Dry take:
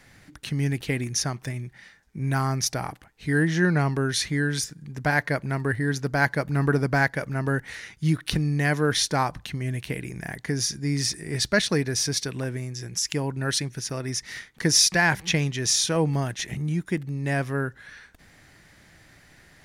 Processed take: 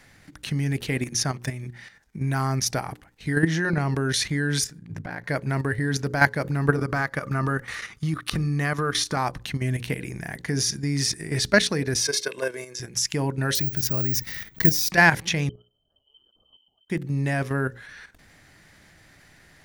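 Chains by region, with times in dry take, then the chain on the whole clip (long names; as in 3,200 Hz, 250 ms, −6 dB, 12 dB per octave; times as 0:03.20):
0:04.78–0:05.24: bass and treble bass +2 dB, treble −6 dB + ring modulation 28 Hz + downward compressor 5 to 1, threshold −32 dBFS
0:06.76–0:09.17: downward compressor, threshold −25 dBFS + parametric band 1,200 Hz +14.5 dB 0.21 octaves
0:12.01–0:12.80: high-pass filter 240 Hz 24 dB per octave + comb filter 1.9 ms, depth 75%
0:13.55–0:14.91: low-shelf EQ 260 Hz +11 dB + downward compressor 2 to 1, threshold −25 dBFS + bad sample-rate conversion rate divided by 2×, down filtered, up zero stuff
0:15.49–0:16.90: inverse Chebyshev band-stop filter 210–1,000 Hz, stop band 80 dB + downward compressor 1.5 to 1, threshold −57 dBFS + voice inversion scrambler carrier 3,100 Hz
whole clip: mains-hum notches 60/120/180/240/300/360/420/480/540 Hz; output level in coarse steps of 10 dB; level +6 dB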